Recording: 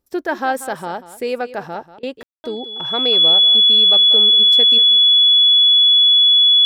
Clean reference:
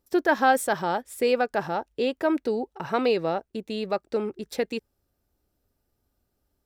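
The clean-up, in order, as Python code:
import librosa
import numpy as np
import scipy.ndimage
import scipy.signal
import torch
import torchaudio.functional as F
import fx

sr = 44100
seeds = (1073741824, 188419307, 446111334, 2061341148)

y = fx.notch(x, sr, hz=3400.0, q=30.0)
y = fx.fix_ambience(y, sr, seeds[0], print_start_s=0.0, print_end_s=0.5, start_s=2.23, end_s=2.44)
y = fx.fix_interpolate(y, sr, at_s=(1.99,), length_ms=39.0)
y = fx.fix_echo_inverse(y, sr, delay_ms=188, level_db=-15.0)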